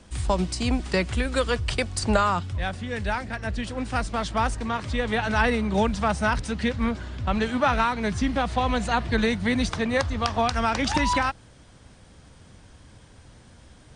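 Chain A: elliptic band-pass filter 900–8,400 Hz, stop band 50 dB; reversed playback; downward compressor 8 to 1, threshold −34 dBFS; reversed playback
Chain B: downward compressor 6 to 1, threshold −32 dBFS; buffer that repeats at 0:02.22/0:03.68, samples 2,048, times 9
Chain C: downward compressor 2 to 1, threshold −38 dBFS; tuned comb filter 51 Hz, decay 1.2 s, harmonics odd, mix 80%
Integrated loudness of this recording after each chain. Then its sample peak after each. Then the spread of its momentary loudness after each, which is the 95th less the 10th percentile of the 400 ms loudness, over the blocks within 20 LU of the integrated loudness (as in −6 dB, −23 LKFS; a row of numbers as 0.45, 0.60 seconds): −38.0, −35.5, −46.0 LKFS; −18.5, −18.5, −29.0 dBFS; 21, 17, 18 LU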